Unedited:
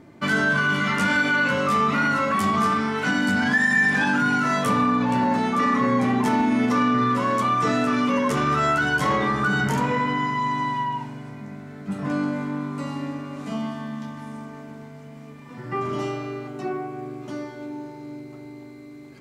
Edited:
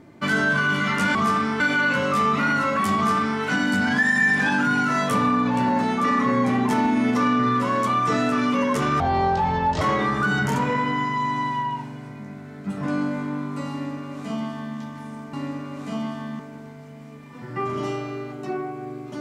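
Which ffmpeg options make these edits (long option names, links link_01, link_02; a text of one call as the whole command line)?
ffmpeg -i in.wav -filter_complex "[0:a]asplit=7[link_01][link_02][link_03][link_04][link_05][link_06][link_07];[link_01]atrim=end=1.152[link_08];[link_02]atrim=start=2.508:end=2.962[link_09];[link_03]atrim=start=1.148:end=8.554[link_10];[link_04]atrim=start=8.55:end=9.03,asetpts=PTS-STARTPTS,asetrate=26019,aresample=44100[link_11];[link_05]atrim=start=9.026:end=14.552[link_12];[link_06]atrim=start=12.928:end=13.992[link_13];[link_07]atrim=start=14.548[link_14];[link_08][link_09]acrossfade=duration=0.004:curve1=hsin:curve2=hsin[link_15];[link_15][link_10]acrossfade=duration=0.004:curve1=hsin:curve2=hsin[link_16];[link_16][link_11]acrossfade=duration=0.004:curve1=hsin:curve2=hsin[link_17];[link_17][link_12]acrossfade=duration=0.004:curve1=hsin:curve2=hsin[link_18];[link_18][link_13]acrossfade=duration=0.004:curve1=hsin:curve2=hsin[link_19];[link_19][link_14]acrossfade=duration=0.004:curve1=hsin:curve2=hsin" out.wav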